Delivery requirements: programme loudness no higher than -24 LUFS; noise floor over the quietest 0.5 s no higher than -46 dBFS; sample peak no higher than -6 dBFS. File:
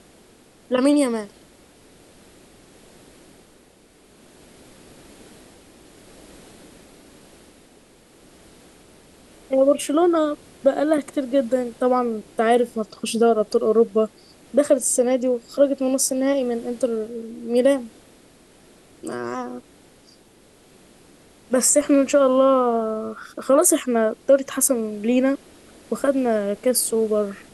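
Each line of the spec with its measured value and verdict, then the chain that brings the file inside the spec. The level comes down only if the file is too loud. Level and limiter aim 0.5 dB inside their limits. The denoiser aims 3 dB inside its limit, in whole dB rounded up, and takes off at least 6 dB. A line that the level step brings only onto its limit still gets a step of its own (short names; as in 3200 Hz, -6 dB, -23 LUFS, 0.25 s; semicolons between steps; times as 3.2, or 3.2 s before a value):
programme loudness -20.5 LUFS: fail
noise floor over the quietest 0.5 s -53 dBFS: OK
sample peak -5.0 dBFS: fail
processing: gain -4 dB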